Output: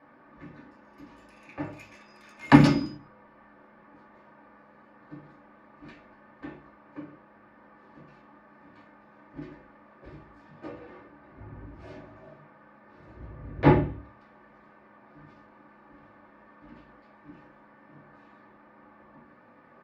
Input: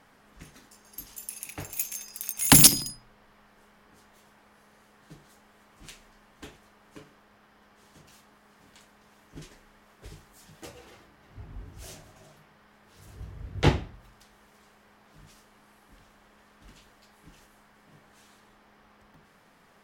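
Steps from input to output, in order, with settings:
low-pass filter 1,500 Hz 12 dB per octave
comb filter 3.4 ms, depth 56%
convolution reverb RT60 0.40 s, pre-delay 3 ms, DRR −2.5 dB
level −2 dB

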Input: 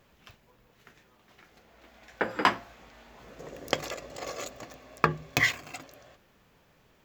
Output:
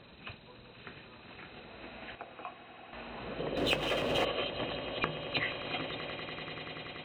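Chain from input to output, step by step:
hearing-aid frequency compression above 2,400 Hz 4 to 1
high-pass filter 130 Hz 6 dB per octave
low-shelf EQ 470 Hz +6 dB
downward compressor 12 to 1, threshold −37 dBFS, peak gain reduction 21.5 dB
0:02.15–0:02.93: formant filter a
on a send: echo that builds up and dies away 96 ms, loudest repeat 8, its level −15.5 dB
0:03.57–0:04.25: on the sum: power curve on the samples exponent 0.7
level +6 dB

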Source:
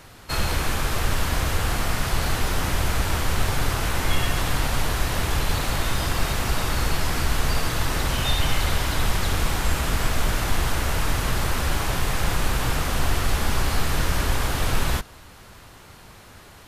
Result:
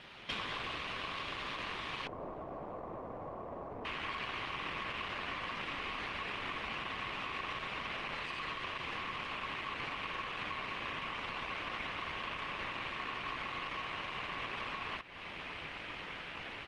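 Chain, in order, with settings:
phase distortion by the signal itself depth 0.3 ms
low-shelf EQ 140 Hz −11.5 dB
automatic gain control gain up to 8.5 dB
brickwall limiter −10 dBFS, peak gain reduction 4.5 dB
downward compressor 20 to 1, threshold −32 dBFS, peak gain reduction 17 dB
ring modulation 1,100 Hz
floating-point word with a short mantissa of 2 bits
low-pass with resonance 3,300 Hz, resonance Q 2.1, from 0:02.07 660 Hz, from 0:03.85 2,800 Hz
slap from a distant wall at 120 metres, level −28 dB
level −2 dB
Opus 32 kbit/s 48,000 Hz

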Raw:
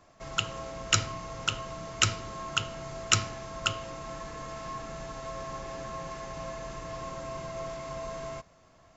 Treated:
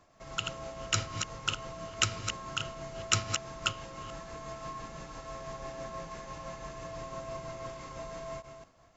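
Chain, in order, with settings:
delay that plays each chunk backwards 216 ms, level −6.5 dB
amplitude tremolo 6 Hz, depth 36%
level −2.5 dB

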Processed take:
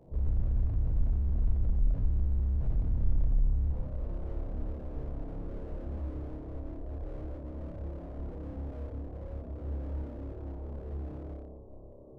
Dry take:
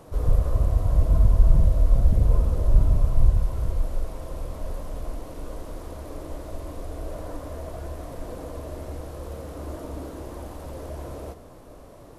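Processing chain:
0:04.00–0:06.24: converter with a step at zero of −33.5 dBFS
Gaussian smoothing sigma 13 samples
chorus effect 0.82 Hz, delay 15.5 ms, depth 2.8 ms
flutter between parallel walls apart 5 metres, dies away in 1.1 s
slew-rate limiting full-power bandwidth 4.1 Hz
level −3 dB

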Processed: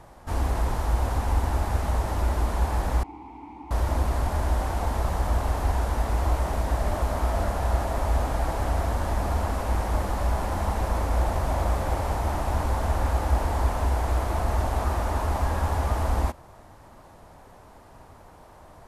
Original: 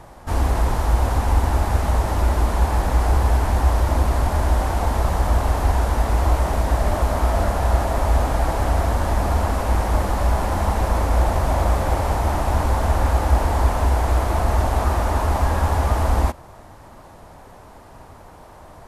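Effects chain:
0:03.03–0:03.71: formant filter u
level −6 dB

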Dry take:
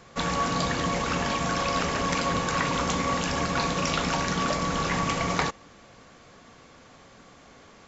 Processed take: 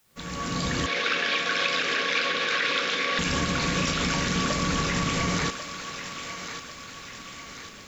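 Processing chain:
fade in at the beginning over 1.10 s
parametric band 790 Hz −9.5 dB 1.2 octaves
brickwall limiter −23.5 dBFS, peak gain reduction 10.5 dB
bit-depth reduction 12 bits, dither triangular
0:00.86–0:03.19: loudspeaker in its box 460–5,300 Hz, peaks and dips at 470 Hz +4 dB, 940 Hz −7 dB, 1,600 Hz +7 dB, 2,400 Hz +6 dB, 3,600 Hz +7 dB
feedback echo with a high-pass in the loop 1,093 ms, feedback 55%, high-pass 650 Hz, level −8 dB
level +6.5 dB

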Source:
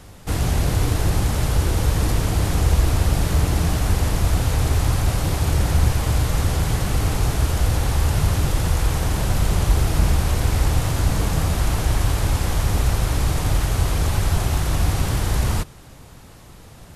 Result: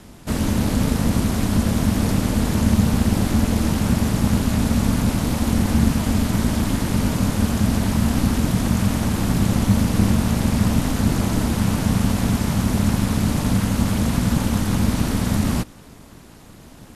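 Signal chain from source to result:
ring modulation 150 Hz
level +2.5 dB

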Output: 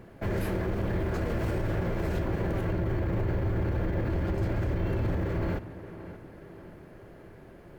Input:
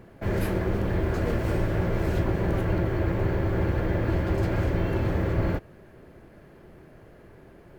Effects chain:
0:02.72–0:05.27: low-shelf EQ 230 Hz +5 dB
brickwall limiter −21.5 dBFS, peak gain reduction 11 dB
tape delay 579 ms, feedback 56%, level −11 dB, low-pass 2,700 Hz

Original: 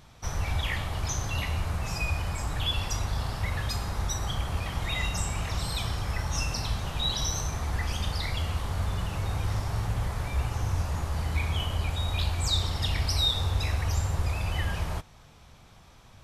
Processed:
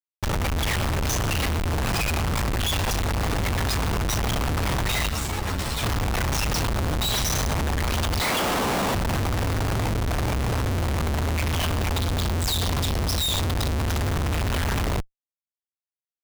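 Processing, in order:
0:06.63–0:07.05: high-shelf EQ 3,500 Hz −9.5 dB
0:08.21–0:08.95: high-pass filter 220 Hz 24 dB per octave
0:11.98–0:13.86: time-frequency box erased 1,200–3,100 Hz
comparator with hysteresis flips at −39.5 dBFS
0:05.09–0:05.83: string-ensemble chorus
level +5.5 dB

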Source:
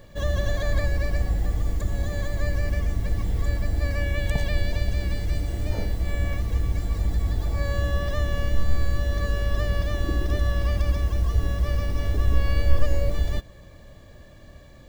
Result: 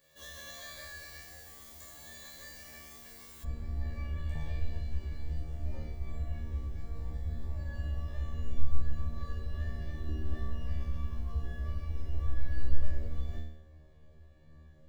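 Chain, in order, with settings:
tuned comb filter 77 Hz, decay 0.73 s, harmonics all, mix 100%
spectral tilt +4 dB per octave, from 0:03.43 −2 dB per octave
level −3 dB

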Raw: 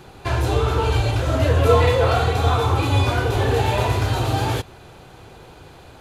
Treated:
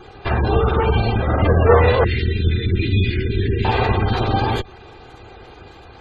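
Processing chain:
lower of the sound and its delayed copy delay 2.5 ms
gate on every frequency bin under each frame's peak −25 dB strong
0:02.04–0:03.65: elliptic band-stop filter 370–1,900 Hz, stop band 40 dB
level +4 dB

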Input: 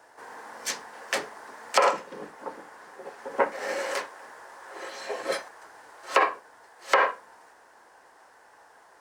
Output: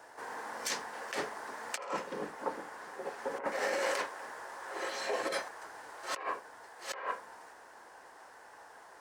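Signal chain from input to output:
compressor whose output falls as the input rises −32 dBFS, ratio −1
level −3.5 dB

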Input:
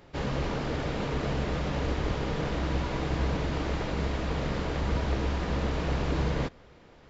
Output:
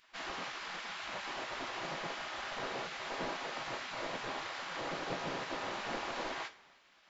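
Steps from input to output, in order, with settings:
gate on every frequency bin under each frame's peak −15 dB weak
coupled-rooms reverb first 0.33 s, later 1.8 s, from −19 dB, DRR 7.5 dB
level −2.5 dB

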